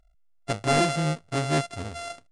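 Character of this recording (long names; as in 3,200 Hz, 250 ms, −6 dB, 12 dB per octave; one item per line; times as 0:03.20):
a buzz of ramps at a fixed pitch in blocks of 64 samples
AAC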